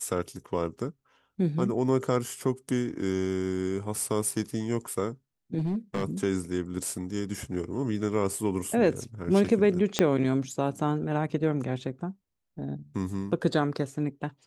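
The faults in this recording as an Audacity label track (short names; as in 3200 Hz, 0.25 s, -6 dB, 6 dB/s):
5.580000	6.040000	clipped -24.5 dBFS
9.990000	9.990000	pop -7 dBFS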